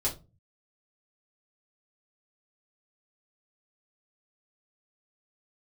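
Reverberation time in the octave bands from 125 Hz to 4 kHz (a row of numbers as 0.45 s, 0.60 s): 0.75 s, 0.50 s, 0.35 s, 0.25 s, 0.20 s, 0.20 s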